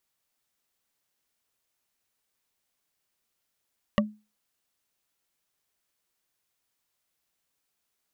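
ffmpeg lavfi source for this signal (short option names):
-f lavfi -i "aevalsrc='0.141*pow(10,-3*t/0.29)*sin(2*PI*212*t)+0.126*pow(10,-3*t/0.086)*sin(2*PI*584.5*t)+0.112*pow(10,-3*t/0.038)*sin(2*PI*1145.6*t)+0.1*pow(10,-3*t/0.021)*sin(2*PI*1893.8*t)+0.0891*pow(10,-3*t/0.013)*sin(2*PI*2828.1*t)':d=0.45:s=44100"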